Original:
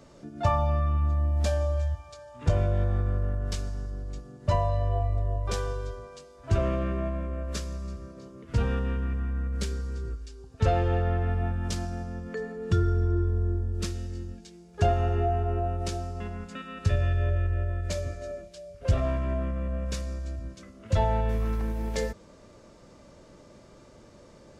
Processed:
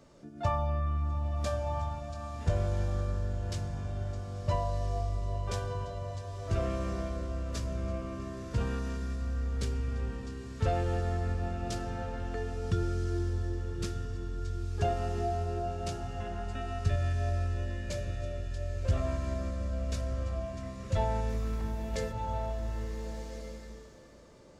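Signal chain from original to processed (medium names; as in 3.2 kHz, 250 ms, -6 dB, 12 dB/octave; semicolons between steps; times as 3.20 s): swelling reverb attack 1410 ms, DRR 3.5 dB; trim -5.5 dB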